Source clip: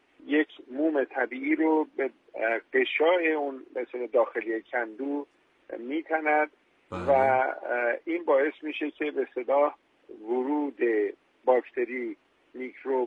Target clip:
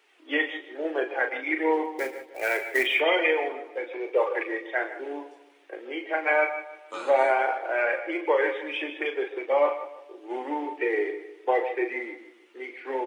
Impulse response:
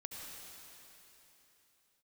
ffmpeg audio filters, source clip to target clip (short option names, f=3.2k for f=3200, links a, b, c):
-filter_complex "[0:a]highpass=f=360:w=0.5412,highpass=f=360:w=1.3066,highshelf=f=2.2k:g=10.5,asettb=1/sr,asplit=3[a][b][c];[a]atrim=end=1.854[d];[b]atrim=start=1.85:end=2.83,asetpts=PTS-STARTPTS,afade=t=in:d=0.004:c=qsin,afade=t=out:st=0.976:d=0.004:c=qsin,acrusher=bits=4:mode=log:mix=0:aa=0.000001[e];[c]atrim=start=2.826[f];[d][e]acrossfade=d=0.004:c1=hsin:c2=qsin[g];[g][f]acrossfade=d=0.004:c1=qsin:c2=hsin,flanger=delay=2.1:depth=1.7:regen=50:speed=1.2:shape=triangular,asplit=2[h][i];[i]adelay=153,lowpass=f=2.8k:p=1,volume=-14dB,asplit=2[j][k];[k]adelay=153,lowpass=f=2.8k:p=1,volume=0.43,asplit=2[l][m];[m]adelay=153,lowpass=f=2.8k:p=1,volume=0.43,asplit=2[n][o];[o]adelay=153,lowpass=f=2.8k:p=1,volume=0.43[p];[h][j][l][n][p]amix=inputs=5:normalize=0,asplit=2[q][r];[1:a]atrim=start_sample=2205,atrim=end_sample=6615,adelay=38[s];[r][s]afir=irnorm=-1:irlink=0,volume=-1.5dB[t];[q][t]amix=inputs=2:normalize=0,volume=2.5dB"